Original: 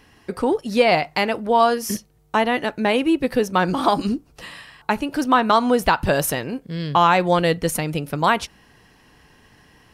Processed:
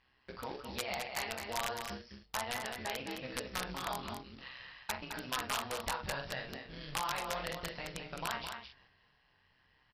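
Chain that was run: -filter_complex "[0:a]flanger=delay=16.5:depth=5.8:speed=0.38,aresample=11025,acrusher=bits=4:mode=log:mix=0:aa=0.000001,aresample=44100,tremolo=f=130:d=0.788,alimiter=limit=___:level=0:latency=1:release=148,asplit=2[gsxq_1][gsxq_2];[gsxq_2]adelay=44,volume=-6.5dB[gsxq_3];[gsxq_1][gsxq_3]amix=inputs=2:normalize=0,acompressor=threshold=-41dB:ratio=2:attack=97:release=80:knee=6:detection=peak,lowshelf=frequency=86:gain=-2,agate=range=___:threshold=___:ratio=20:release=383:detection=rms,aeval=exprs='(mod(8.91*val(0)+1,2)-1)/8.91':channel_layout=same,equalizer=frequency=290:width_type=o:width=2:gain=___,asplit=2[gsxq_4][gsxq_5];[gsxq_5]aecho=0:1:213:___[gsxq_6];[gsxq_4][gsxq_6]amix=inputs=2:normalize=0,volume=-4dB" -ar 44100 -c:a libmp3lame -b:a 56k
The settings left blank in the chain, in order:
-9dB, -6dB, -48dB, -11, 0.473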